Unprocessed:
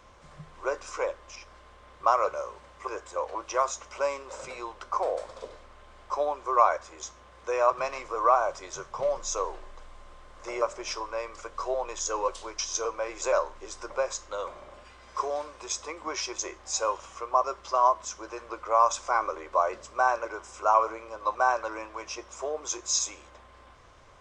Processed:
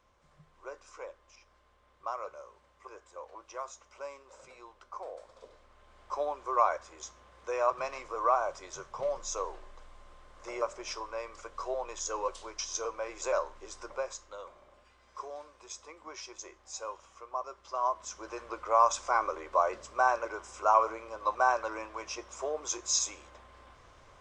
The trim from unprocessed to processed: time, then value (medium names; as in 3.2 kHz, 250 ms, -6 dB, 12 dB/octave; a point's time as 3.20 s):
5.21 s -14 dB
6.17 s -5 dB
13.84 s -5 dB
14.48 s -12 dB
17.57 s -12 dB
18.33 s -2 dB